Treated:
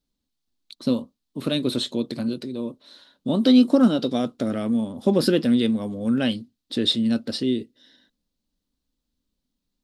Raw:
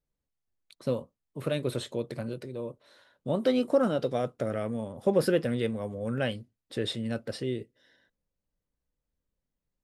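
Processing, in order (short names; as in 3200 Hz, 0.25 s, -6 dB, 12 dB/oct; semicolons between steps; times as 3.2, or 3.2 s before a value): graphic EQ 125/250/500/2000/4000 Hz -7/+12/-6/-5/+11 dB; gain +4.5 dB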